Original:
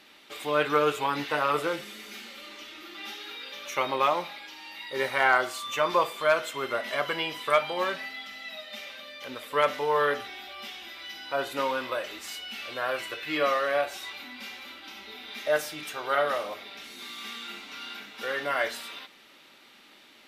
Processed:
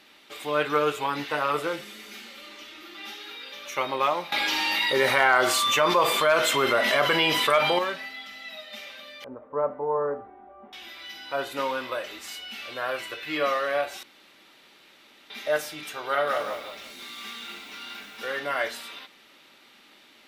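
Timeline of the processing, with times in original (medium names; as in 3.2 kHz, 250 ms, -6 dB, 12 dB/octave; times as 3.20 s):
4.32–7.79 s: level flattener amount 70%
9.24–10.73 s: low-pass 1 kHz 24 dB/octave
14.03–15.30 s: room tone
16.10–18.39 s: bit-crushed delay 173 ms, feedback 35%, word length 8-bit, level -7 dB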